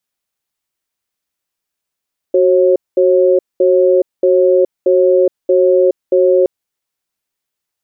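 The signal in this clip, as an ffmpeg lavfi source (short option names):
-f lavfi -i "aevalsrc='0.316*(sin(2*PI*371*t)+sin(2*PI*542*t))*clip(min(mod(t,0.63),0.42-mod(t,0.63))/0.005,0,1)':d=4.12:s=44100"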